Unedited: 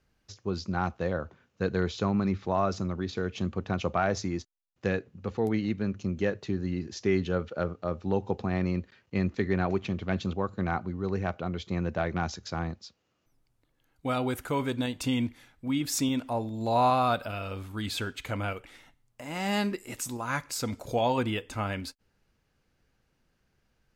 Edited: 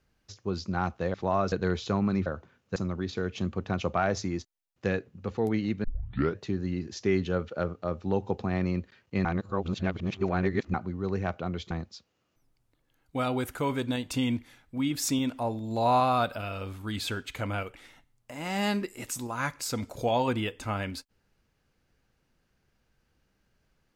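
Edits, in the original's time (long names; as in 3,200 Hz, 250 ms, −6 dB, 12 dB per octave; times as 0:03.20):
0:01.14–0:01.64: swap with 0:02.38–0:02.76
0:05.84: tape start 0.54 s
0:09.25–0:10.74: reverse
0:11.71–0:12.61: remove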